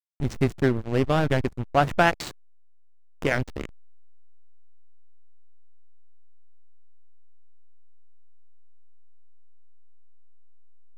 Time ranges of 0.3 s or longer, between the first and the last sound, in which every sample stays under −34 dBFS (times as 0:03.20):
0:02.31–0:03.22